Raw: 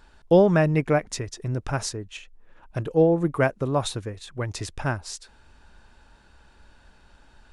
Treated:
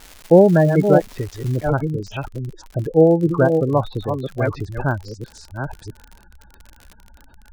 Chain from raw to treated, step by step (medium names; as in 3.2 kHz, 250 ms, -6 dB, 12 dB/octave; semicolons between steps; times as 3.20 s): chunks repeated in reverse 657 ms, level -6.5 dB; de-esser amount 85%; low-pass that closes with the level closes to 2.1 kHz, closed at -17 dBFS; spectral gate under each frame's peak -20 dB strong; treble shelf 5.6 kHz -10.5 dB; crackle 400 per s -35 dBFS, from 1.68 s 47 per s; trim +6 dB